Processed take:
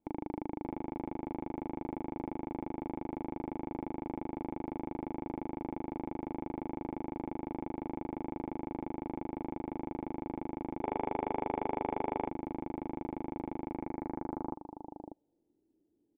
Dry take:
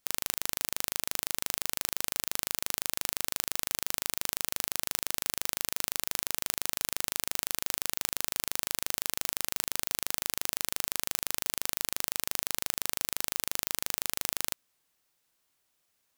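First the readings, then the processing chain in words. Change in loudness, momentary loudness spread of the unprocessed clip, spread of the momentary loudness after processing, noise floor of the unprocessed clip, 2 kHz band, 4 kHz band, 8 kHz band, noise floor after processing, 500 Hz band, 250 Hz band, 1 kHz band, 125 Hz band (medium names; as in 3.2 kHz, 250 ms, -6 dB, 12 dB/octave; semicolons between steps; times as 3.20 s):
-8.5 dB, 0 LU, 5 LU, -76 dBFS, -15.0 dB, under -30 dB, under -40 dB, -76 dBFS, +6.5 dB, +13.5 dB, +4.0 dB, +5.0 dB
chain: cascade formant filter u; on a send: delay 593 ms -9.5 dB; on the sum: time-frequency box 10.83–12.28 s, 370–3500 Hz +10 dB; low-pass sweep 2.9 kHz -> 390 Hz, 13.64–15.63 s; trim +17.5 dB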